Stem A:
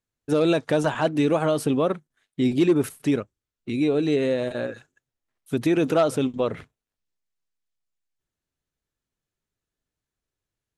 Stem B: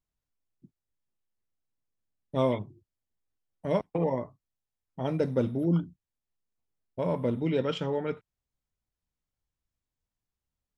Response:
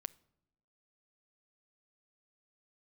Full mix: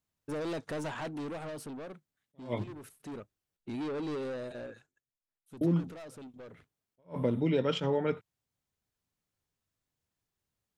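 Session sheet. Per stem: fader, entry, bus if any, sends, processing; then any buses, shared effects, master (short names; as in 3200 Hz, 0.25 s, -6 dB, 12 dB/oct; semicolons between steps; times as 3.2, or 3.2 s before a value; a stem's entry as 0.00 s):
-7.0 dB, 0.00 s, no send, soft clip -26 dBFS, distortion -7 dB; auto duck -11 dB, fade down 1.45 s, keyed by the second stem
+3.0 dB, 0.00 s, muted 3.57–5.61, no send, HPF 80 Hz 24 dB/oct; compressor, threshold -27 dBFS, peak gain reduction 7.5 dB; attack slew limiter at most 280 dB/s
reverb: off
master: dry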